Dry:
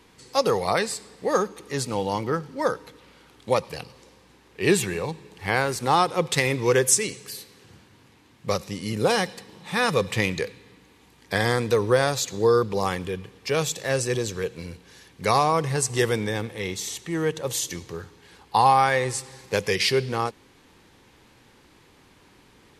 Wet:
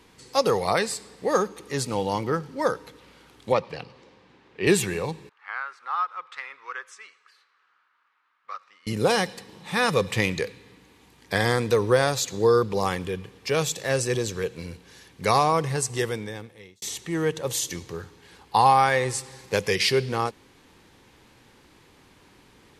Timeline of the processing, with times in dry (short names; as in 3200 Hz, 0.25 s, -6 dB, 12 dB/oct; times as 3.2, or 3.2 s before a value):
3.52–4.67 BPF 100–3700 Hz
5.29–8.87 ladder band-pass 1400 Hz, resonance 70%
15.53–16.82 fade out